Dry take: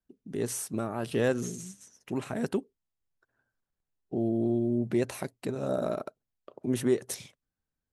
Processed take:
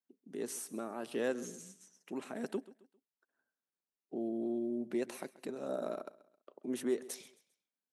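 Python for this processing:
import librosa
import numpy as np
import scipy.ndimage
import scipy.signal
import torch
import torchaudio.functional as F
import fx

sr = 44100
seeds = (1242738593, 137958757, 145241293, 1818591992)

p1 = scipy.signal.sosfilt(scipy.signal.butter(4, 210.0, 'highpass', fs=sr, output='sos'), x)
p2 = p1 + fx.echo_feedback(p1, sr, ms=133, feedback_pct=37, wet_db=-19.0, dry=0)
y = p2 * 10.0 ** (-7.5 / 20.0)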